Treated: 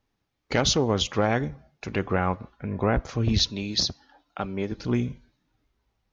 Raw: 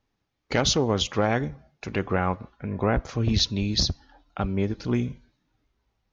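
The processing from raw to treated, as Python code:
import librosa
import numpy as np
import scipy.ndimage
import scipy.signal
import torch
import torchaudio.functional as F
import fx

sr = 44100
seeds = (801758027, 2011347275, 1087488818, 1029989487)

y = fx.highpass(x, sr, hz=290.0, slope=6, at=(3.5, 4.72))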